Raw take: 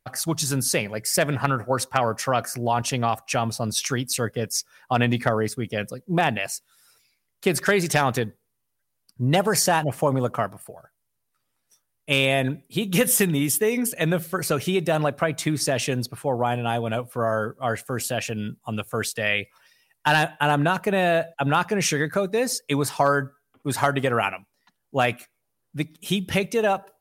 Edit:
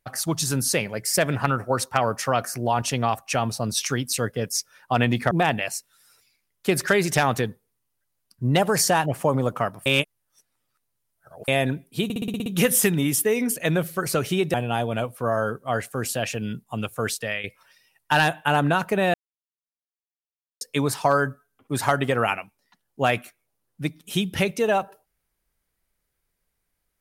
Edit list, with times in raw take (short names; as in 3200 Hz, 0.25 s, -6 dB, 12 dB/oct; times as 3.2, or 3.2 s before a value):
5.31–6.09 cut
10.64–12.26 reverse
12.82 stutter 0.06 s, 8 plays
14.9–16.49 cut
19.12–19.39 fade out, to -12 dB
21.09–22.56 mute